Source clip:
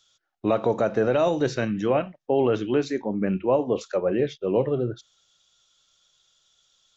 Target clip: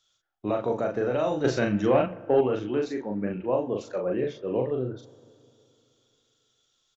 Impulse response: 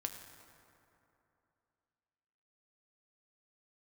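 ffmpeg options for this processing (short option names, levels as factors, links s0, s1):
-filter_complex "[0:a]asplit=2[s0][s1];[s1]adelay=39,volume=0.708[s2];[s0][s2]amix=inputs=2:normalize=0,asplit=2[s3][s4];[1:a]atrim=start_sample=2205,lowpass=3000[s5];[s4][s5]afir=irnorm=-1:irlink=0,volume=0.335[s6];[s3][s6]amix=inputs=2:normalize=0,asettb=1/sr,asplit=3[s7][s8][s9];[s7]atrim=end=1.444[s10];[s8]atrim=start=1.44:end=2.41,asetpts=PTS-STARTPTS,afade=t=in:d=0.004:c=qsin,afade=t=out:st=0.966:d=0.004:c=qsin,acontrast=61[s11];[s9]atrim=start=2.406[s12];[s10][s11]acrossfade=d=0.004:c1=hsin:c2=qsin[s13];[s13][s12]acrossfade=d=0.004:c1=qsin:c2=hsin,volume=0.398"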